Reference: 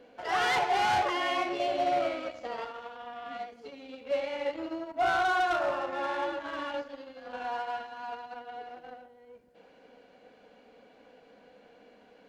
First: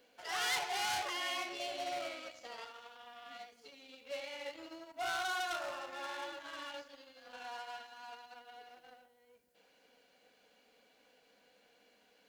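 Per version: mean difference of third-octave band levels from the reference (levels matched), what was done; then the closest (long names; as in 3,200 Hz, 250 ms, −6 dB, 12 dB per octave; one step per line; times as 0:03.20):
6.0 dB: first-order pre-emphasis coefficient 0.9
level +4.5 dB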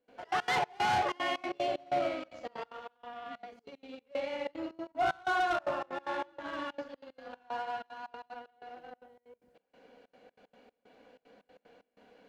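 4.0 dB: dynamic equaliser 160 Hz, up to +6 dB, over −51 dBFS, Q 0.99
gate pattern ".xx.x.xx..xxxx" 188 BPM −24 dB
level −2.5 dB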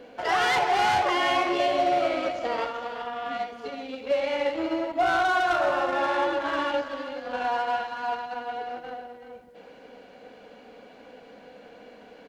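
3.0 dB: downward compressor, threshold −29 dBFS, peak gain reduction 6 dB
single-tap delay 379 ms −10.5 dB
level +8.5 dB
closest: third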